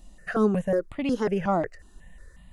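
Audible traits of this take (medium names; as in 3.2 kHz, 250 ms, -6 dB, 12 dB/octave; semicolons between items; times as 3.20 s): notches that jump at a steady rate 5.5 Hz 450–1600 Hz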